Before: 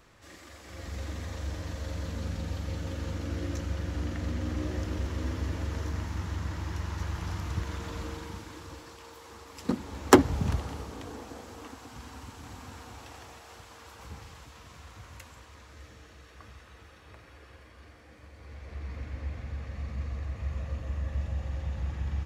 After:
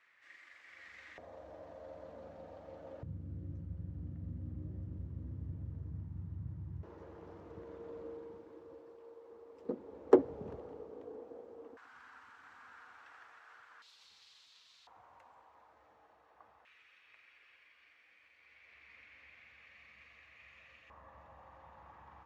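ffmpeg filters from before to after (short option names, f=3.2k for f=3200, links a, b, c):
-af "asetnsamples=n=441:p=0,asendcmd='1.18 bandpass f 640;3.03 bandpass f 130;6.83 bandpass f 460;11.77 bandpass f 1500;13.82 bandpass f 4000;14.87 bandpass f 820;16.65 bandpass f 2400;20.9 bandpass f 980',bandpass=f=2k:t=q:w=3.5:csg=0"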